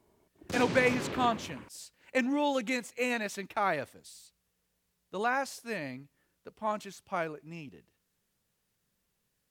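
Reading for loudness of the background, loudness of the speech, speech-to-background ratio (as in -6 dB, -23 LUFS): -37.0 LUFS, -32.0 LUFS, 5.0 dB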